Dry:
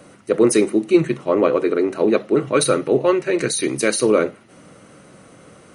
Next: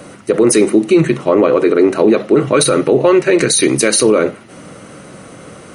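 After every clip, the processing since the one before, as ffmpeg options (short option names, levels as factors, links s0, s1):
-af "alimiter=level_in=3.76:limit=0.891:release=50:level=0:latency=1,volume=0.891"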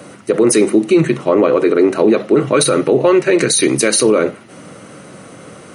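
-af "highpass=86,volume=0.891"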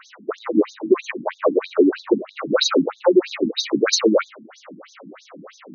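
-filter_complex "[0:a]acrossover=split=130[s0][s1];[s1]acontrast=50[s2];[s0][s2]amix=inputs=2:normalize=0,afftfilt=real='re*between(b*sr/1024,220*pow(5000/220,0.5+0.5*sin(2*PI*3.1*pts/sr))/1.41,220*pow(5000/220,0.5+0.5*sin(2*PI*3.1*pts/sr))*1.41)':imag='im*between(b*sr/1024,220*pow(5000/220,0.5+0.5*sin(2*PI*3.1*pts/sr))/1.41,220*pow(5000/220,0.5+0.5*sin(2*PI*3.1*pts/sr))*1.41)':win_size=1024:overlap=0.75,volume=0.708"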